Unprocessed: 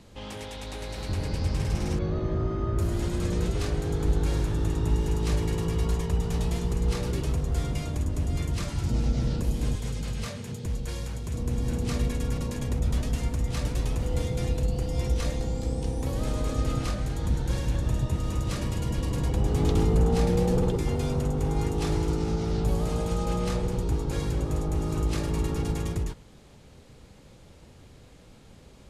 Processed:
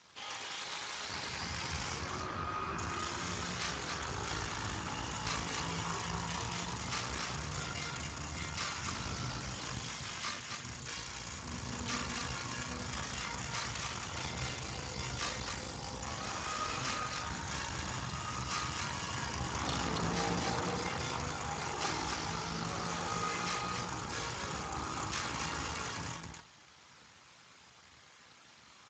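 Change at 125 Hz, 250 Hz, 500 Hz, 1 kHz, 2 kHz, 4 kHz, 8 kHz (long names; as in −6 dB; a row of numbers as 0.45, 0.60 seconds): −15.5, −13.0, −13.0, +1.0, +4.0, +2.0, +1.5 decibels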